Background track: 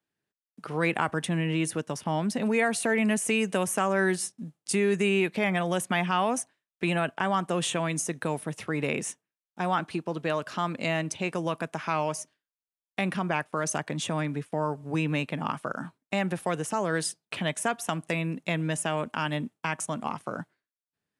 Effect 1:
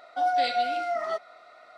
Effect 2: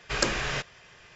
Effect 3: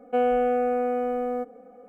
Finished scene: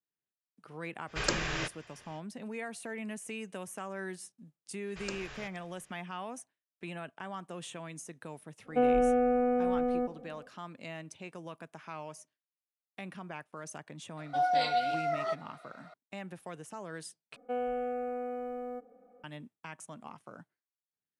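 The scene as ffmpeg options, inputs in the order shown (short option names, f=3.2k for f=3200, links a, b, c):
-filter_complex "[2:a]asplit=2[a][b];[3:a]asplit=2[c][d];[0:a]volume=-15dB[e];[b]aecho=1:1:471:0.0841[f];[c]bass=f=250:g=11,treble=f=4k:g=-5[g];[e]asplit=2[h][i];[h]atrim=end=17.364[j];[d]atrim=end=1.88,asetpts=PTS-STARTPTS,volume=-11.5dB[k];[i]atrim=start=19.236[l];[a]atrim=end=1.15,asetpts=PTS-STARTPTS,volume=-4.5dB,afade=t=in:d=0.05,afade=t=out:st=1.1:d=0.05,adelay=1060[m];[f]atrim=end=1.15,asetpts=PTS-STARTPTS,volume=-16.5dB,afade=t=in:d=0.004:c=hsin,afade=t=out:st=1.146:d=0.004:c=hsin,adelay=4860[n];[g]atrim=end=1.88,asetpts=PTS-STARTPTS,volume=-4.5dB,afade=t=in:d=0.1,afade=t=out:st=1.78:d=0.1,adelay=8630[o];[1:a]atrim=end=1.77,asetpts=PTS-STARTPTS,volume=-3.5dB,afade=t=in:d=0.004:c=hsin,afade=t=out:st=1.766:d=0.004:c=hsin,adelay=14170[p];[j][k]acrossfade=d=0.004:c1=hsin:c2=hsin[q];[q][l]acrossfade=d=0.004:c1=hsin:c2=hsin[r];[r][m][n][o][p]amix=inputs=5:normalize=0"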